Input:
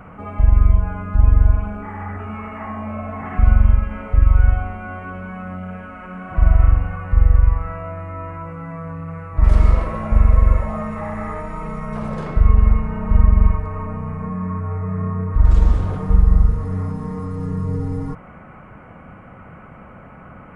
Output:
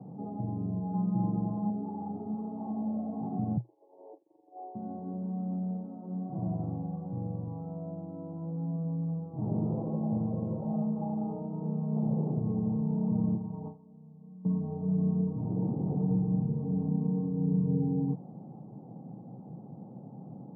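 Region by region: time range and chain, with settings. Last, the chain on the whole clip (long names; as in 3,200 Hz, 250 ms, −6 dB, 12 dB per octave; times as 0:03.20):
0:00.93–0:01.70: parametric band 1,600 Hz +9.5 dB 0.78 octaves + comb filter 5.8 ms, depth 100%
0:03.57–0:04.75: downward compressor, threshold −13 dBFS + linear-phase brick-wall band-pass 300–1,100 Hz + downward expander −34 dBFS
0:13.34–0:14.45: noise gate with hold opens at −13 dBFS, closes at −19 dBFS + dynamic equaliser 870 Hz, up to +7 dB, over −49 dBFS, Q 3.4 + downward compressor 2 to 1, threshold −23 dBFS
whole clip: Chebyshev band-pass filter 120–820 Hz, order 5; parametric band 610 Hz −12.5 dB 0.74 octaves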